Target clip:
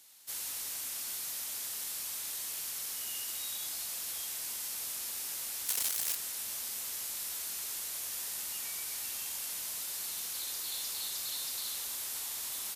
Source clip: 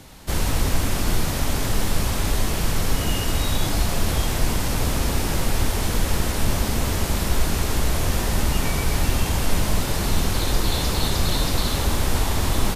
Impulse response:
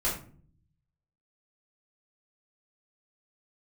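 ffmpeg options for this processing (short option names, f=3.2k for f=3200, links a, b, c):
-filter_complex "[0:a]asettb=1/sr,asplit=3[a][b][c];[a]atrim=end=5.664[d];[b]atrim=start=5.66:end=6.16,asetpts=PTS-STARTPTS,afade=t=in:d=0.004:c=qsin,afade=t=out:st=0.496:d=0.004:c=qsin,aeval=exprs='0.376*(cos(1*acos(clip(val(0)/0.376,-1,1)))-cos(1*PI/2))+0.15*(cos(6*acos(clip(val(0)/0.376,-1,1)))-cos(6*PI/2))':c=same[e];[c]atrim=start=6.156[f];[d][e]acrossfade=d=0.004:c1=hsin:c2=qsin[g];[g][f]acrossfade=d=0.004:c1=qsin:c2=hsin,aderivative,volume=-7dB"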